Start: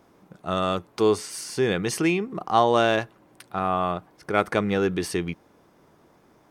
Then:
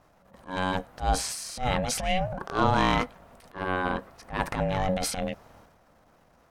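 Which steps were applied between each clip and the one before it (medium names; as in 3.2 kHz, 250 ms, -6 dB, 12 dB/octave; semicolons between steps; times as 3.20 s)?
transient shaper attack -12 dB, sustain +8 dB; ring modulator 370 Hz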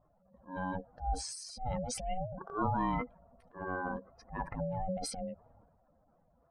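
spectral contrast enhancement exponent 2.4; trim -8.5 dB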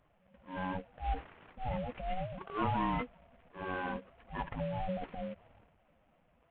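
CVSD coder 16 kbps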